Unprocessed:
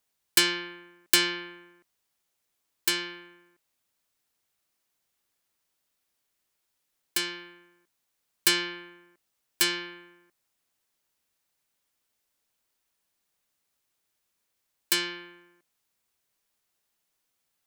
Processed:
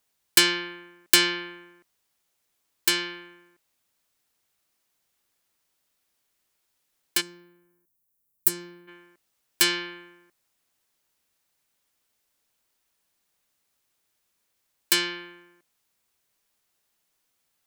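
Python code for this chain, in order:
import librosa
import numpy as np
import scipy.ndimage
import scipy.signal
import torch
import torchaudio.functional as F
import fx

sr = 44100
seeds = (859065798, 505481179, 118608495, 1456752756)

y = fx.curve_eq(x, sr, hz=(110.0, 3200.0, 14000.0), db=(0, -23, 3), at=(7.2, 8.87), fade=0.02)
y = y * 10.0 ** (3.5 / 20.0)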